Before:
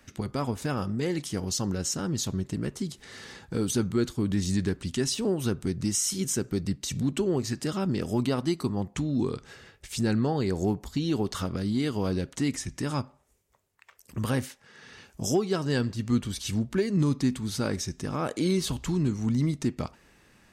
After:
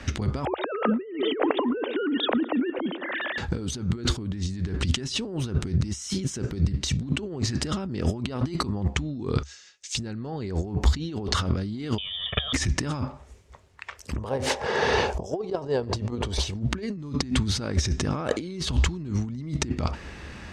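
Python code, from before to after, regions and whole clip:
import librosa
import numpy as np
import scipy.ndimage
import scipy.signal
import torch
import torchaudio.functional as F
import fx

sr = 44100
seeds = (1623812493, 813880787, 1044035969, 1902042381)

y = fx.chain(x, sr, fx.sine_speech(),
    fx.highpass_res(hz=490.0, q=2.6),
    fx.echo_wet_lowpass(ms=111, feedback_pct=70, hz=2800.0, wet_db=-21.5), at=(0.45, 3.38))
y = fx.chain(y, sr, fx.bandpass_q(hz=6500.0, q=3.4),
    fx.comb(ms=5.5, depth=0.35), at=(9.43, 9.95))
y = fx.chain(y, sr, fx.freq_invert(carrier_hz=3500),
    fx.peak_eq(hz=110.0, db=8.0, octaves=2.8),
    fx.comb(ms=1.7, depth=0.97), at=(11.98, 12.53))
y = fx.chain(y, sr, fx.band_shelf(hz=620.0, db=13.5, octaves=1.7),
    fx.over_compress(threshold_db=-25.0, ratio=-0.5), at=(14.18, 16.54))
y = fx.over_compress(y, sr, threshold_db=-38.0, ratio=-1.0)
y = scipy.signal.sosfilt(scipy.signal.butter(2, 5400.0, 'lowpass', fs=sr, output='sos'), y)
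y = fx.peak_eq(y, sr, hz=70.0, db=14.0, octaves=0.53)
y = y * librosa.db_to_amplitude(8.5)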